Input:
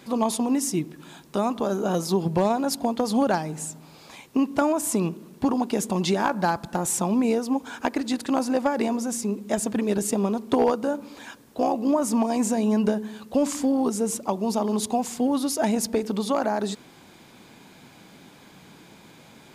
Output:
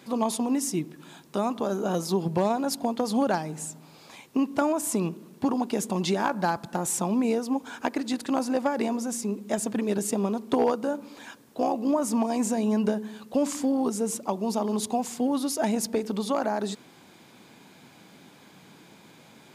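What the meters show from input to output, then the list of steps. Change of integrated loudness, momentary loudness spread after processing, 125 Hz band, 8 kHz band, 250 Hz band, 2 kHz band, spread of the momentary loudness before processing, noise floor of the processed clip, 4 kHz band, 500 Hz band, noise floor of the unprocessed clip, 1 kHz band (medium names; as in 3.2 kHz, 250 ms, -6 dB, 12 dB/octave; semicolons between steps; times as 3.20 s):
-2.5 dB, 7 LU, -3.0 dB, -2.5 dB, -2.5 dB, -2.5 dB, 7 LU, -53 dBFS, -2.5 dB, -2.5 dB, -51 dBFS, -2.5 dB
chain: high-pass 100 Hz; trim -2.5 dB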